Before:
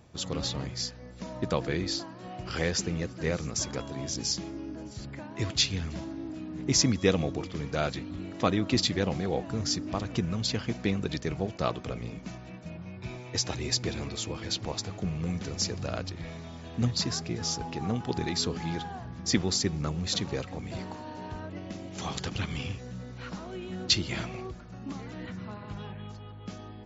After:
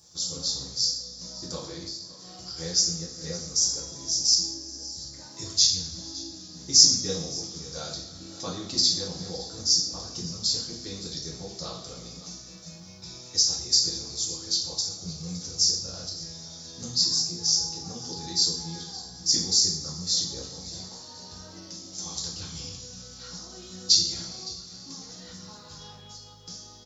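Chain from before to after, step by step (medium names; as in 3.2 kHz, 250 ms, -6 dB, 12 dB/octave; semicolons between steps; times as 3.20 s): resonant high shelf 3.6 kHz +13 dB, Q 3; 1.58–2.58 s: compression, threshold -28 dBFS, peak gain reduction 15.5 dB; on a send: delay 565 ms -19.5 dB; on the sum: two-slope reverb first 0.57 s, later 2.4 s, DRR -5.5 dB; tape noise reduction on one side only encoder only; trim -15.5 dB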